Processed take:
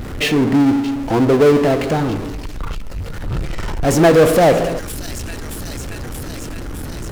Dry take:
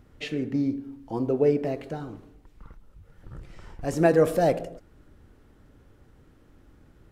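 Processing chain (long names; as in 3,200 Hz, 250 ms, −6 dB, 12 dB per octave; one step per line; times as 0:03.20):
delay with a high-pass on its return 622 ms, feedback 74%, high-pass 3,700 Hz, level −15 dB
power curve on the samples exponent 0.5
level +5.5 dB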